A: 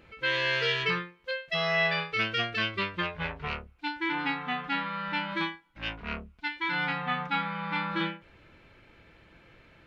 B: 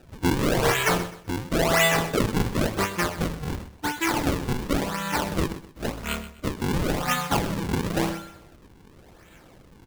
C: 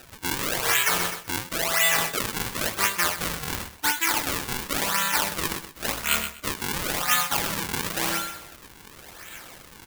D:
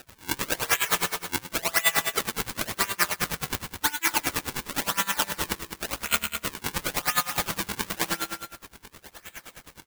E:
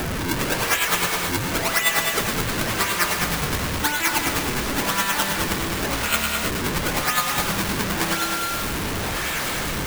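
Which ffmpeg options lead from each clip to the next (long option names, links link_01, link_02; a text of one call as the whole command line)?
ffmpeg -i in.wav -af "bandreject=frequency=106:width_type=h:width=4,bandreject=frequency=212:width_type=h:width=4,bandreject=frequency=318:width_type=h:width=4,bandreject=frequency=424:width_type=h:width=4,bandreject=frequency=530:width_type=h:width=4,bandreject=frequency=636:width_type=h:width=4,bandreject=frequency=742:width_type=h:width=4,bandreject=frequency=848:width_type=h:width=4,bandreject=frequency=954:width_type=h:width=4,bandreject=frequency=1060:width_type=h:width=4,bandreject=frequency=1166:width_type=h:width=4,bandreject=frequency=1272:width_type=h:width=4,bandreject=frequency=1378:width_type=h:width=4,bandreject=frequency=1484:width_type=h:width=4,bandreject=frequency=1590:width_type=h:width=4,bandreject=frequency=1696:width_type=h:width=4,bandreject=frequency=1802:width_type=h:width=4,bandreject=frequency=1908:width_type=h:width=4,bandreject=frequency=2014:width_type=h:width=4,bandreject=frequency=2120:width_type=h:width=4,acrusher=samples=40:mix=1:aa=0.000001:lfo=1:lforange=64:lforate=0.94,aecho=1:1:127|254|381:0.188|0.0546|0.0158,volume=6dB" out.wav
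ffmpeg -i in.wav -af "areverse,acompressor=threshold=-30dB:ratio=10,areverse,equalizer=frequency=1400:width_type=o:width=2.7:gain=8.5,crystalizer=i=7:c=0,volume=-2.5dB" out.wav
ffmpeg -i in.wav -af "aecho=1:1:209:0.376,aeval=exprs='val(0)*pow(10,-23*(0.5-0.5*cos(2*PI*9.6*n/s))/20)':channel_layout=same,volume=3dB" out.wav
ffmpeg -i in.wav -af "aeval=exprs='val(0)+0.5*0.112*sgn(val(0))':channel_layout=same,volume=-1dB" out.wav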